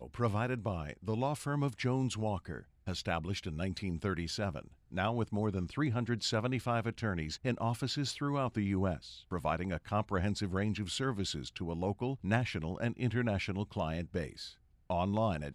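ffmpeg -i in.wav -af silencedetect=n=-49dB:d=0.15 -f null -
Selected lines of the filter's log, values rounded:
silence_start: 2.62
silence_end: 2.87 | silence_duration: 0.24
silence_start: 4.73
silence_end: 4.92 | silence_duration: 0.20
silence_start: 14.53
silence_end: 14.90 | silence_duration: 0.38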